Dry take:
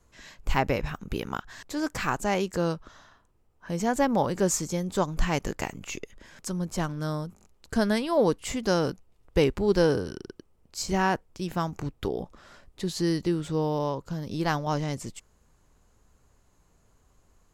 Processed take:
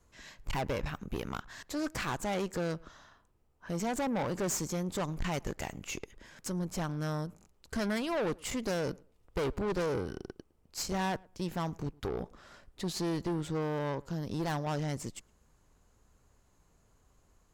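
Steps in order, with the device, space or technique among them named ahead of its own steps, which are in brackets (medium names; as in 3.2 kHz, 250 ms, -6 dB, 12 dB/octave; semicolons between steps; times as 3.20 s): rockabilly slapback (valve stage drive 29 dB, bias 0.6; tape echo 108 ms, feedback 22%, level -23 dB, low-pass 1.6 kHz)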